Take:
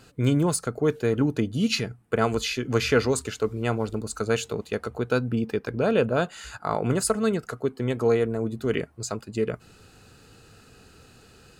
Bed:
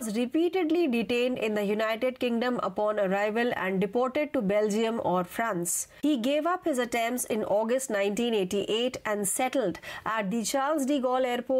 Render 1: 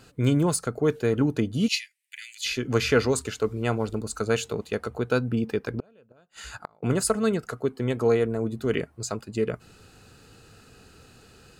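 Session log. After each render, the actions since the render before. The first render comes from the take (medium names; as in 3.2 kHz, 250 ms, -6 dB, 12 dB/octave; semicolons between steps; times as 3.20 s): 1.68–2.46 s: steep high-pass 1.9 kHz 72 dB/octave; 5.69–6.83 s: inverted gate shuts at -17 dBFS, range -35 dB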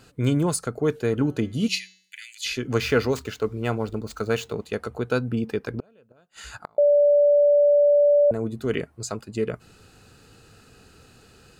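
1.15–2.21 s: de-hum 186.7 Hz, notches 38; 2.80–4.66 s: median filter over 5 samples; 6.78–8.31 s: bleep 581 Hz -13.5 dBFS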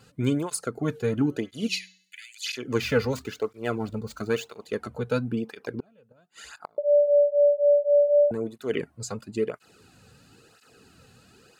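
cancelling through-zero flanger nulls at 0.99 Hz, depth 3.3 ms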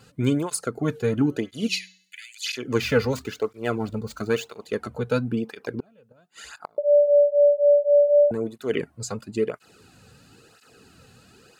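trim +2.5 dB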